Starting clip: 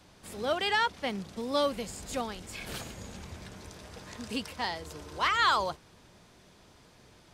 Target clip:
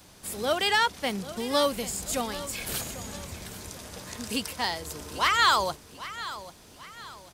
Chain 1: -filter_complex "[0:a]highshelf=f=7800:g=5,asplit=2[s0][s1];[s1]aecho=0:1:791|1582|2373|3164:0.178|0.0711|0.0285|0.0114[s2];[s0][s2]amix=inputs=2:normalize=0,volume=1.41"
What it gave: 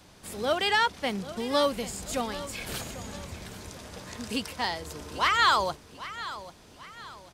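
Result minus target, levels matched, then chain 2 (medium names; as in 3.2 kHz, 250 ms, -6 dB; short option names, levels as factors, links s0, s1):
8 kHz band -4.5 dB
-filter_complex "[0:a]highshelf=f=7800:g=16,asplit=2[s0][s1];[s1]aecho=0:1:791|1582|2373|3164:0.178|0.0711|0.0285|0.0114[s2];[s0][s2]amix=inputs=2:normalize=0,volume=1.41"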